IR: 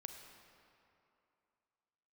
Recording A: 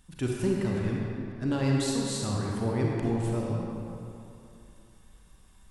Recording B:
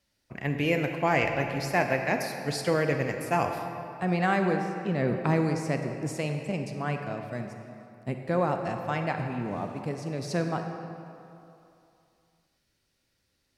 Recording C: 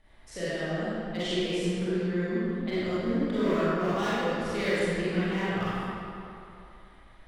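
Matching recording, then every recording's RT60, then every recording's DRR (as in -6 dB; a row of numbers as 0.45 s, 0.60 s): B; 2.8 s, 2.7 s, 2.8 s; -2.5 dB, 4.5 dB, -12.0 dB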